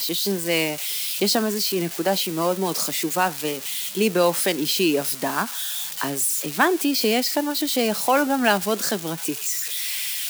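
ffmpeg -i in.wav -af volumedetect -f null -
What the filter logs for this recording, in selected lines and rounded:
mean_volume: -23.1 dB
max_volume: -4.9 dB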